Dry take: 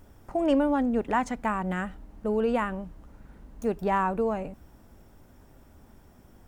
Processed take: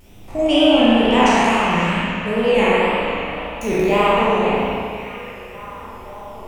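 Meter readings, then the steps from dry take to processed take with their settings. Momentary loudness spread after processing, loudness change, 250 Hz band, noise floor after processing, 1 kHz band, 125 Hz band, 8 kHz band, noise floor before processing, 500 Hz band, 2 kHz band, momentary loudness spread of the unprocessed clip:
20 LU, +11.0 dB, +10.5 dB, -37 dBFS, +11.5 dB, +11.5 dB, no reading, -55 dBFS, +12.0 dB, +15.5 dB, 12 LU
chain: spectral sustain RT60 1.70 s; resonant high shelf 2 kHz +7 dB, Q 3; wow and flutter 130 cents; on a send: repeats whose band climbs or falls 542 ms, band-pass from 3.1 kHz, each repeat -0.7 oct, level -9 dB; on the sum: spring tank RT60 1.9 s, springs 35/43 ms, chirp 55 ms, DRR -6.5 dB; trim +1 dB

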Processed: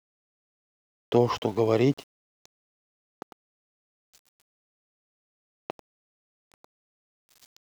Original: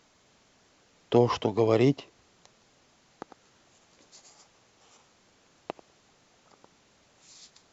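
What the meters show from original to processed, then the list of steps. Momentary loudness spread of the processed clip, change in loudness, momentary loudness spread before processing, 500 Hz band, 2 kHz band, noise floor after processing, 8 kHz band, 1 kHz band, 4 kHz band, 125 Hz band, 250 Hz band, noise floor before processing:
21 LU, 0.0 dB, 21 LU, 0.0 dB, 0.0 dB, under -85 dBFS, no reading, 0.0 dB, 0.0 dB, 0.0 dB, 0.0 dB, -64 dBFS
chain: small samples zeroed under -44.5 dBFS

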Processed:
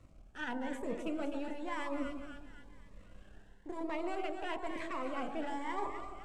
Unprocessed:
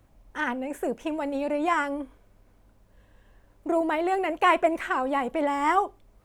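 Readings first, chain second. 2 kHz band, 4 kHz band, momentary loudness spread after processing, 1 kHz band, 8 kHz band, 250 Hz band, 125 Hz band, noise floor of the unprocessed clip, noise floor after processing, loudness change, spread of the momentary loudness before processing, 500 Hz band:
-13.5 dB, -10.0 dB, 20 LU, -15.5 dB, -11.0 dB, -10.0 dB, no reading, -61 dBFS, -58 dBFS, -13.5 dB, 10 LU, -13.0 dB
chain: partial rectifier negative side -7 dB; peaking EQ 8 kHz +5 dB 0.4 oct; de-hum 47.61 Hz, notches 26; reverse; compression 6:1, threshold -38 dBFS, peak gain reduction 19.5 dB; reverse; distance through air 61 m; on a send: two-band feedback delay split 1.3 kHz, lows 145 ms, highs 254 ms, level -7 dB; on the sum: Shepard-style phaser rising 1 Hz; trim +4 dB

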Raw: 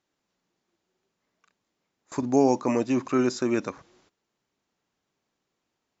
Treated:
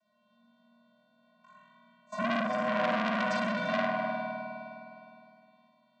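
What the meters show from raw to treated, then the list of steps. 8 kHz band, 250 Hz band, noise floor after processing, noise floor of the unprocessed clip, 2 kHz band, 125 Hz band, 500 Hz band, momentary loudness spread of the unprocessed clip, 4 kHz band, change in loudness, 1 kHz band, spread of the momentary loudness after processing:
no reading, -8.5 dB, -70 dBFS, -82 dBFS, +8.0 dB, -6.0 dB, -5.5 dB, 12 LU, +3.0 dB, -6.0 dB, +1.5 dB, 15 LU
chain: vocoder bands 16, square 210 Hz; bass shelf 230 Hz -5 dB; reverse; compression 6:1, threshold -32 dBFS, peak gain reduction 11 dB; reverse; peaking EQ 790 Hz +13.5 dB 0.88 oct; on a send: flutter echo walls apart 3.7 m, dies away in 1.1 s; on the sum: spring tank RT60 2.8 s, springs 51 ms, chirp 55 ms, DRR -7.5 dB; transformer saturation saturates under 2.1 kHz; trim +4 dB

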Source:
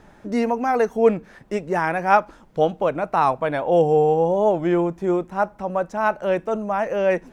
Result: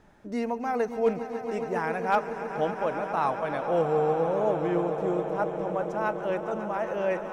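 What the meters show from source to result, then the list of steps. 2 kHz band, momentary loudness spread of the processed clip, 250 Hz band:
-7.0 dB, 6 LU, -7.5 dB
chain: echo with a slow build-up 138 ms, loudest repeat 5, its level -13.5 dB; hard clipper -6 dBFS, distortion -32 dB; trim -8.5 dB

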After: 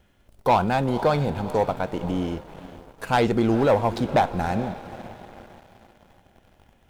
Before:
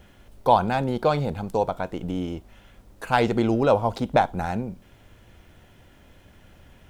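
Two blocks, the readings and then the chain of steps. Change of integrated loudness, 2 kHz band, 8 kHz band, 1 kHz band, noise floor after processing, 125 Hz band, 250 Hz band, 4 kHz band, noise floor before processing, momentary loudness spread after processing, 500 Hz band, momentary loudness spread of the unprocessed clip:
+0.5 dB, +0.5 dB, no reading, 0.0 dB, -60 dBFS, +1.5 dB, +1.5 dB, +1.0 dB, -54 dBFS, 19 LU, +0.5 dB, 11 LU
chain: echo that smears into a reverb 475 ms, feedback 54%, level -15.5 dB; waveshaping leveller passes 2; trim -5.5 dB

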